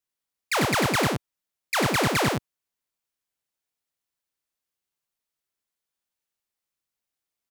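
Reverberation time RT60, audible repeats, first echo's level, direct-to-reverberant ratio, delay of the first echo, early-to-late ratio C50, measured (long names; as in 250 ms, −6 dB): no reverb audible, 1, −3.5 dB, no reverb audible, 95 ms, no reverb audible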